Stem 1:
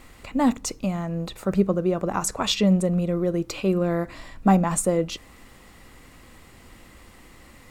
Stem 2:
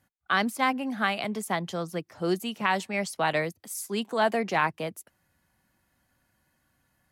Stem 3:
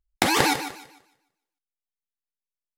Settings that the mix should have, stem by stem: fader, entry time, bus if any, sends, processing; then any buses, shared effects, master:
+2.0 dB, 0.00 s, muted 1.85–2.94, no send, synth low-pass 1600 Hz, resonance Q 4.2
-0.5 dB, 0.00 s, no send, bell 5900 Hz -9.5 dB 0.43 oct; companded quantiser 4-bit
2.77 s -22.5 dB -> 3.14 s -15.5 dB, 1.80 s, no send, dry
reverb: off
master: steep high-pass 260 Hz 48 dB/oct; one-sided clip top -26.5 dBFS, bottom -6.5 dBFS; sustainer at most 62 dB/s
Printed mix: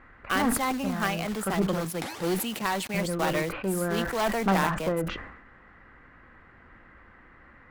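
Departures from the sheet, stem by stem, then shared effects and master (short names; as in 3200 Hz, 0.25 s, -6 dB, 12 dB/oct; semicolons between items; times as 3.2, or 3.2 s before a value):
stem 1 +2.0 dB -> -6.5 dB; master: missing steep high-pass 260 Hz 48 dB/oct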